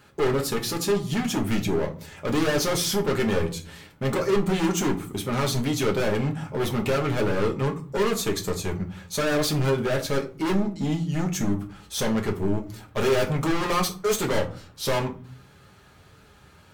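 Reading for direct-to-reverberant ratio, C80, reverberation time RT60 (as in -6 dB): 0.5 dB, 19.5 dB, 0.40 s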